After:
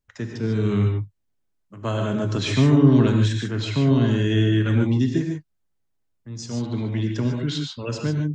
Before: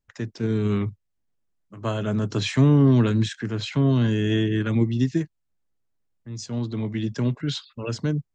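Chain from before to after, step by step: gated-style reverb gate 170 ms rising, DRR 2.5 dB

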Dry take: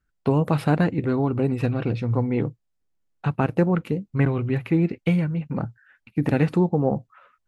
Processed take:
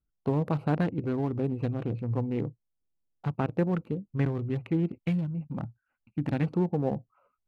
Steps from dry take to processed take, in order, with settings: local Wiener filter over 25 samples; 4.88–6.44 s: peaking EQ 440 Hz -9 dB 0.51 oct; trim -6.5 dB

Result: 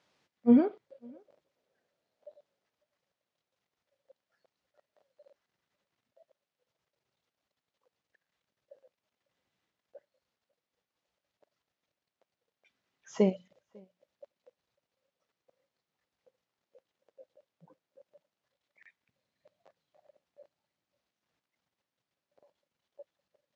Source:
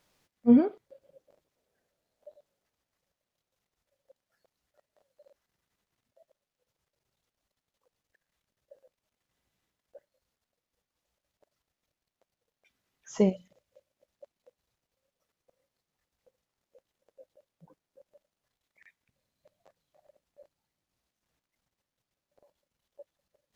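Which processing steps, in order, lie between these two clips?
band-pass 100–5100 Hz; bass shelf 230 Hz -4 dB; echo from a far wall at 94 m, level -29 dB

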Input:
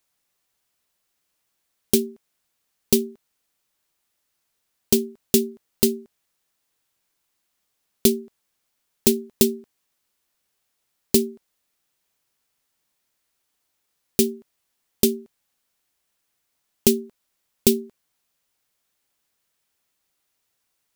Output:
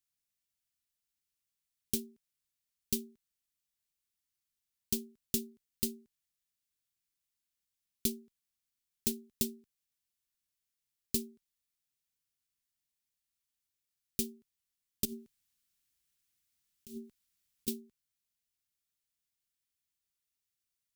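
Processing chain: 15.05–17.68 s: compressor with a negative ratio -28 dBFS, ratio -1; amplifier tone stack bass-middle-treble 6-0-2; trim +2 dB

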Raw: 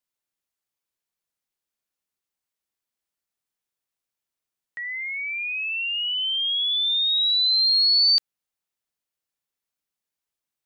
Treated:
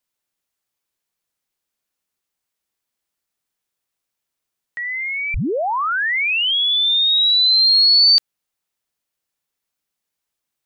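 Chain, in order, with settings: 5.34 s: tape start 1.21 s; 7.70–8.16 s: high-pass 1.5 kHz; trim +6 dB

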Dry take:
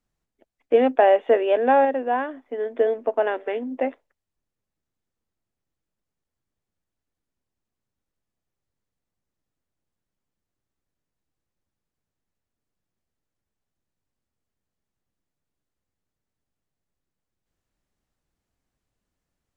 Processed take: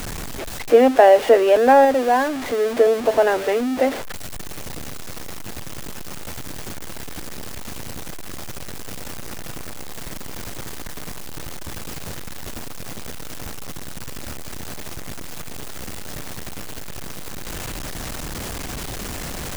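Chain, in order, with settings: jump at every zero crossing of -27 dBFS; trim +4 dB

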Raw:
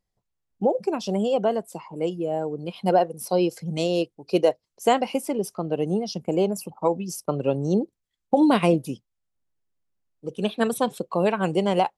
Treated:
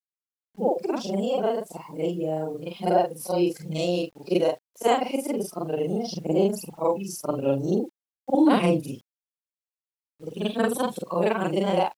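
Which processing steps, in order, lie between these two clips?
short-time spectra conjugated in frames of 102 ms; phaser 0.47 Hz, delay 3.9 ms, feedback 23%; bit crusher 10-bit; trim +1.5 dB

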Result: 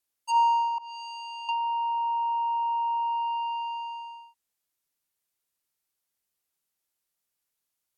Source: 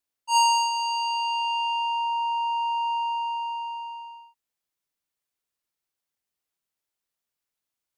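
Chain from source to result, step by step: 0.78–1.49 s: expander -18 dBFS; treble shelf 7.5 kHz +8.5 dB; low-pass that closes with the level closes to 1.3 kHz, closed at -23.5 dBFS

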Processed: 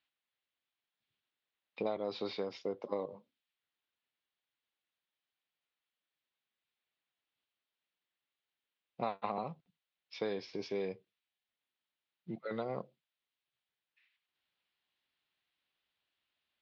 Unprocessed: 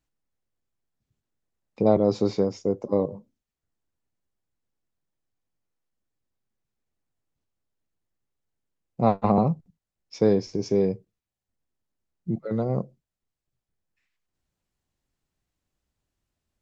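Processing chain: band-pass filter 3.6 kHz, Q 2; compression 6:1, threshold -47 dBFS, peak gain reduction 11.5 dB; distance through air 360 m; trim +16 dB

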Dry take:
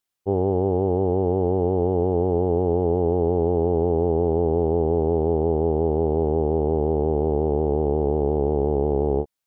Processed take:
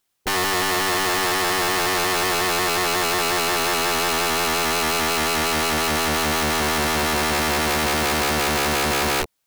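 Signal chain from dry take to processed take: in parallel at -2.5 dB: peak limiter -21.5 dBFS, peak gain reduction 11.5 dB; on the sum: integer overflow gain 22.5 dB; trim +5 dB

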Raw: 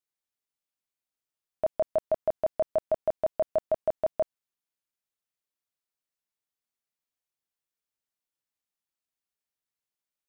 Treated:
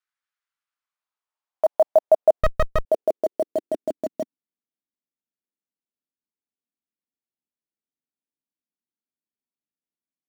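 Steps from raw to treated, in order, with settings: dynamic bell 280 Hz, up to +6 dB, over -45 dBFS, Q 1.2; band-pass sweep 1.4 kHz -> 250 Hz, 0.51–4.19 s; treble shelf 2 kHz +11.5 dB; in parallel at -8 dB: bit crusher 7-bit; 2.41–2.85 s: on the sum: sliding maximum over 33 samples; trim +7 dB

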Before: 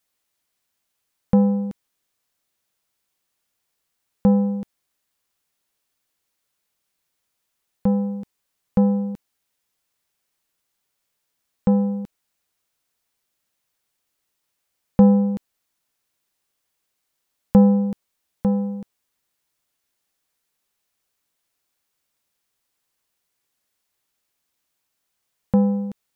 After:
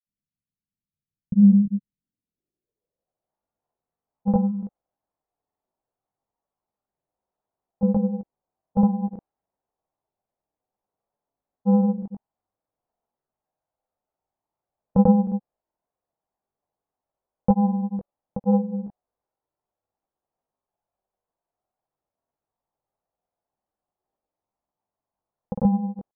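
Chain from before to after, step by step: low-pass sweep 180 Hz -> 770 Hz, 1.85–3.34 s; chorus voices 2, 0.27 Hz, delay 20 ms, depth 1.1 ms; granulator, pitch spread up and down by 0 st

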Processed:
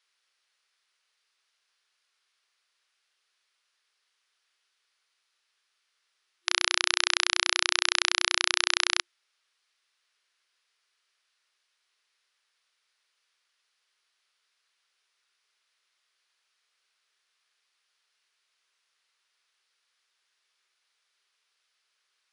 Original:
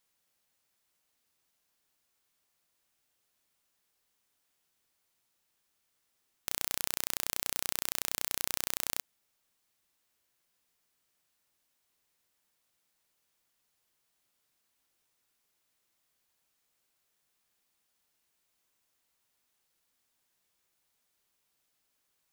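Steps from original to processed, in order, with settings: tracing distortion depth 0.026 ms; high-order bell 2.5 kHz +11 dB 2.6 oct; FFT band-pass 350–11000 Hz; trim -3.5 dB

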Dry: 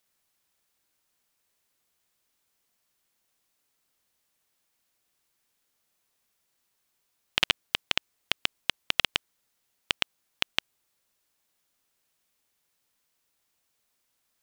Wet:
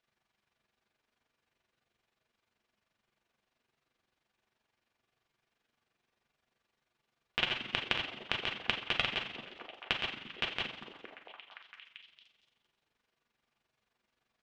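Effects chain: two-slope reverb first 0.29 s, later 1.5 s, from -18 dB, DRR -3 dB; compression, threshold -23 dBFS, peak gain reduction 8 dB; low-pass 3 kHz 12 dB/octave; on a send: repeats whose band climbs or falls 229 ms, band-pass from 230 Hz, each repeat 0.7 oct, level -3 dB; on the sum: AM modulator 23 Hz, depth 50%

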